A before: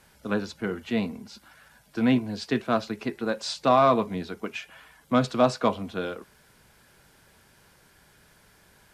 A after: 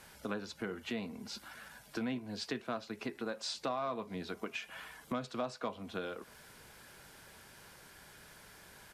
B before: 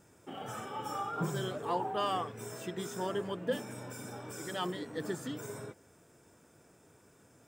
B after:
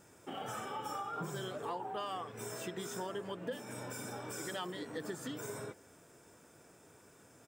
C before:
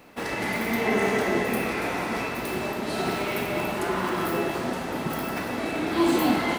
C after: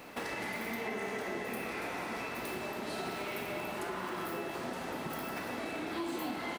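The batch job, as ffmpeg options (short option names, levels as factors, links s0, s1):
-filter_complex "[0:a]lowshelf=f=300:g=-5,acompressor=threshold=0.00891:ratio=4,asplit=2[s0][s1];[s1]adelay=641.4,volume=0.0355,highshelf=f=4000:g=-14.4[s2];[s0][s2]amix=inputs=2:normalize=0,volume=1.41"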